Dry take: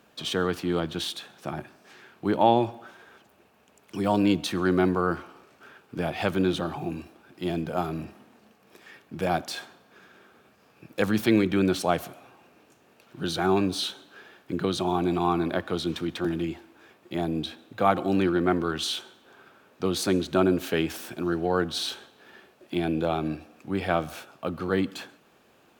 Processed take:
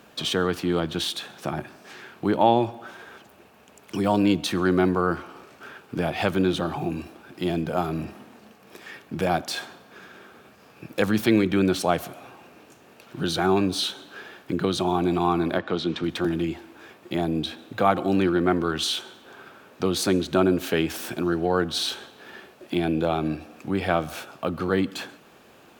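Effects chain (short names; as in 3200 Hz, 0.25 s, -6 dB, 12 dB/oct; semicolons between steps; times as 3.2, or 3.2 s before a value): in parallel at +3 dB: compressor, threshold -36 dBFS, peak gain reduction 20.5 dB; 15.58–16.04 on the sum: BPF 120–4600 Hz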